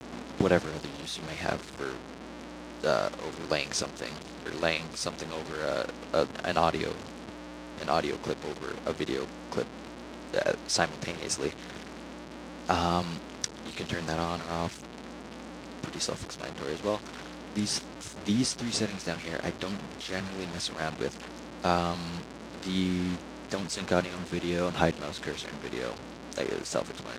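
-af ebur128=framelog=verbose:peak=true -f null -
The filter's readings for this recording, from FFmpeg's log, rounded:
Integrated loudness:
  I:         -32.2 LUFS
  Threshold: -42.6 LUFS
Loudness range:
  LRA:         3.5 LU
  Threshold: -52.7 LUFS
  LRA low:   -34.9 LUFS
  LRA high:  -31.4 LUFS
True peak:
  Peak:       -6.3 dBFS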